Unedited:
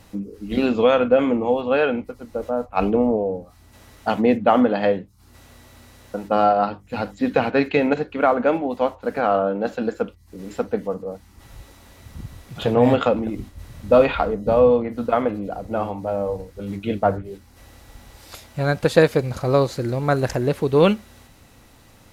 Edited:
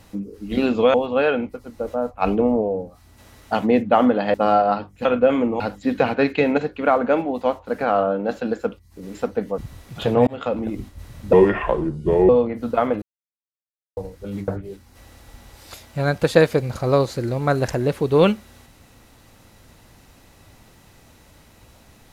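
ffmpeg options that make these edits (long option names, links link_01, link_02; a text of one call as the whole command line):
ffmpeg -i in.wav -filter_complex "[0:a]asplit=12[link_01][link_02][link_03][link_04][link_05][link_06][link_07][link_08][link_09][link_10][link_11][link_12];[link_01]atrim=end=0.942[link_13];[link_02]atrim=start=1.488:end=4.892[link_14];[link_03]atrim=start=6.248:end=6.962[link_15];[link_04]atrim=start=0.938:end=1.492[link_16];[link_05]atrim=start=6.958:end=10.942[link_17];[link_06]atrim=start=12.178:end=12.87,asetpts=PTS-STARTPTS,afade=type=out:start_time=0.688:duration=0.004:curve=hsin[link_18];[link_07]atrim=start=12.87:end=13.934,asetpts=PTS-STARTPTS,afade=type=in:duration=0.4[link_19];[link_08]atrim=start=13.93:end=14.64,asetpts=PTS-STARTPTS,asetrate=32634,aresample=44100,atrim=end_sample=42312,asetpts=PTS-STARTPTS[link_20];[link_09]atrim=start=14.636:end=15.37,asetpts=PTS-STARTPTS,afade=type=out:start_time=0.73:duration=0.004:curve=hsin[link_21];[link_10]atrim=start=15.37:end=16.32,asetpts=PTS-STARTPTS,volume=0[link_22];[link_11]atrim=start=16.32:end=16.832,asetpts=PTS-STARTPTS,afade=type=in:duration=0.004:curve=hsin[link_23];[link_12]atrim=start=17.088[link_24];[link_13][link_14]acrossfade=duration=0.004:curve1=hsin:curve2=hsin[link_25];[link_25][link_15]acrossfade=duration=0.004:curve1=hsin:curve2=hsin[link_26];[link_26][link_16]acrossfade=duration=0.004:curve1=hsin:curve2=hsin[link_27];[link_27][link_17]acrossfade=duration=0.004:curve1=hsin:curve2=hsin[link_28];[link_18][link_19]concat=n=2:v=0:a=1[link_29];[link_28][link_29]acrossfade=duration=0.004:curve1=hsin:curve2=hsin[link_30];[link_30][link_20]acrossfade=duration=0.004:curve1=hsin:curve2=hsin[link_31];[link_21][link_22][link_23]concat=n=3:v=0:a=1[link_32];[link_31][link_32]acrossfade=duration=0.004:curve1=hsin:curve2=hsin[link_33];[link_33][link_24]acrossfade=duration=0.004:curve1=hsin:curve2=hsin" out.wav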